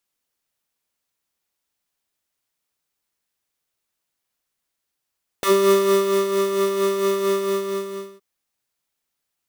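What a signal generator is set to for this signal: synth patch with tremolo G4, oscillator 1 triangle, oscillator 2 square, interval +19 st, oscillator 2 level -17.5 dB, sub -8.5 dB, noise -18 dB, filter highpass, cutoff 250 Hz, Q 0.89, filter envelope 3 oct, filter decay 0.08 s, filter sustain 15%, attack 1.5 ms, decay 0.81 s, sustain -6.5 dB, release 0.88 s, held 1.89 s, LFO 4.4 Hz, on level 5.5 dB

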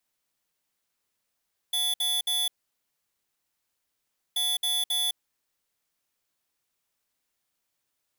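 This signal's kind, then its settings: beep pattern square 3450 Hz, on 0.21 s, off 0.06 s, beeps 3, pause 1.88 s, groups 2, -26.5 dBFS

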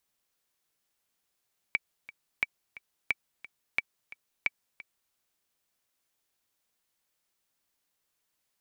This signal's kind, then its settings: metronome 177 bpm, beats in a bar 2, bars 5, 2300 Hz, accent 18.5 dB -12.5 dBFS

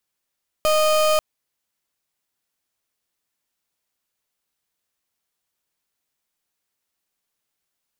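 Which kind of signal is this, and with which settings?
pulse 618 Hz, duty 32% -17.5 dBFS 0.54 s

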